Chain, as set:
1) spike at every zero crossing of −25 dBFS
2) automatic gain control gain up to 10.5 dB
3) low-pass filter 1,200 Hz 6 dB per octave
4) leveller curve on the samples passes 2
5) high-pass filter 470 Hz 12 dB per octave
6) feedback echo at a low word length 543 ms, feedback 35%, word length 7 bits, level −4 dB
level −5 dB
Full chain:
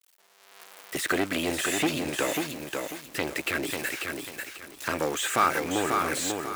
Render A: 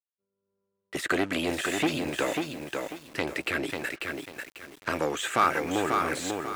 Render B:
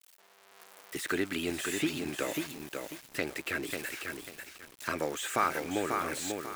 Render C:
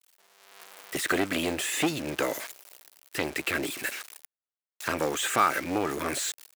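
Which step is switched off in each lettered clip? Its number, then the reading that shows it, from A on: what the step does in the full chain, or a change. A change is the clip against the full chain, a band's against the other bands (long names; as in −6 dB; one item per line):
1, distortion level −6 dB
4, change in integrated loudness −5.5 LU
6, change in crest factor +1.5 dB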